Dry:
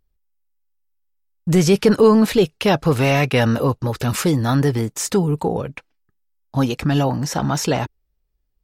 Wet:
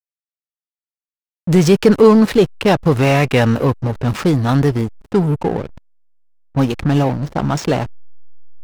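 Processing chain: level-controlled noise filter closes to 380 Hz, open at -15.5 dBFS; hysteresis with a dead band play -21 dBFS; trim +3.5 dB

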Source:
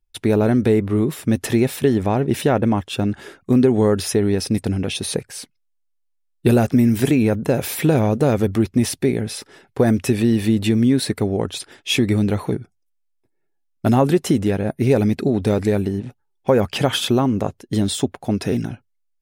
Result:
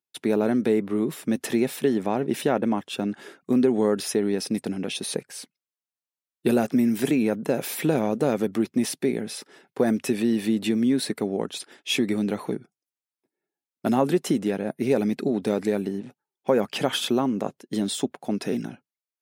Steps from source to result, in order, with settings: high-pass 170 Hz 24 dB/octave; trim -5 dB

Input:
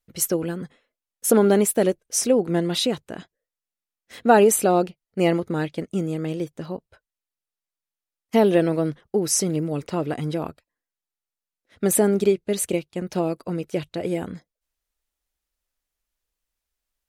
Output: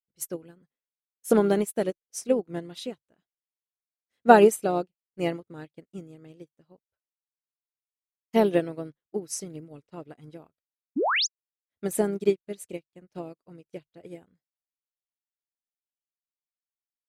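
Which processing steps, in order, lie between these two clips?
painted sound rise, 10.96–11.27 s, 230–7400 Hz -17 dBFS; harmony voices -3 st -17 dB; upward expansion 2.5:1, over -37 dBFS; trim +2 dB

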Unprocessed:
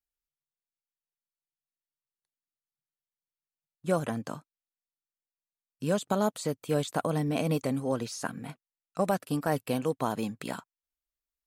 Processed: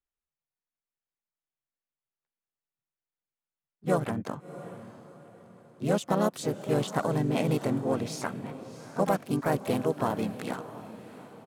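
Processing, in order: local Wiener filter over 9 samples; harmony voices -3 st -5 dB, +5 st -10 dB; echo that smears into a reverb 685 ms, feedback 40%, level -14 dB

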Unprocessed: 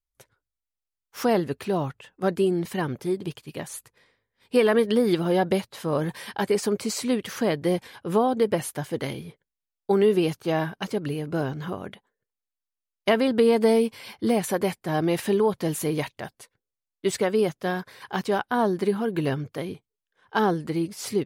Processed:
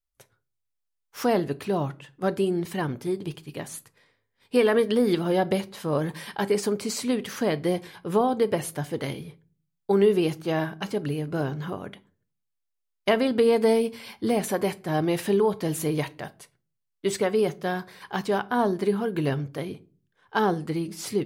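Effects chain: simulated room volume 240 m³, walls furnished, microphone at 0.34 m; trim -1 dB

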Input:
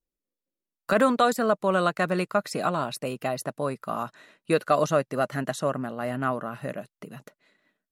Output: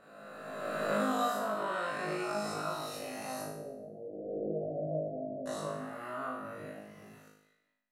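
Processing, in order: reverse spectral sustain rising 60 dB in 2.10 s; 3.45–5.46 s: steep low-pass 690 Hz 96 dB/octave; feedback comb 52 Hz, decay 0.77 s, harmonics all, mix 100%; trim -3.5 dB

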